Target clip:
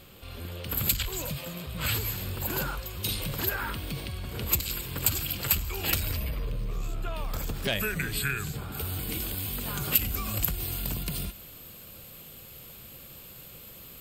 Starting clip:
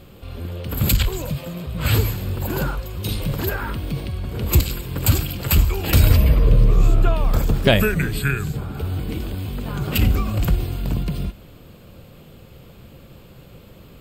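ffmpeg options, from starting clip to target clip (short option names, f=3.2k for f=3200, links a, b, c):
-af "asoftclip=type=tanh:threshold=-6.5dB,asetnsamples=n=441:p=0,asendcmd='8.72 equalizer g 14',equalizer=f=12k:w=0.54:g=2.5,acompressor=threshold=-19dB:ratio=10,tiltshelf=f=970:g=-5,volume=-4.5dB"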